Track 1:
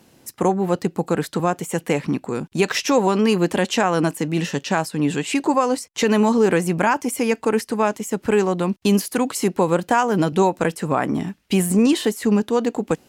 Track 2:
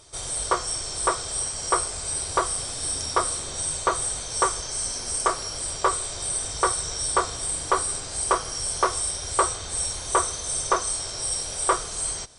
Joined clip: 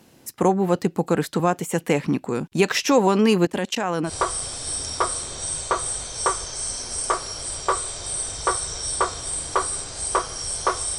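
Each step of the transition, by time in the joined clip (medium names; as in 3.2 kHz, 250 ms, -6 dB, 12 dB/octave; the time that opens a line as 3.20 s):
track 1
3.45–4.13 s: level held to a coarse grid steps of 24 dB
4.09 s: go over to track 2 from 2.25 s, crossfade 0.08 s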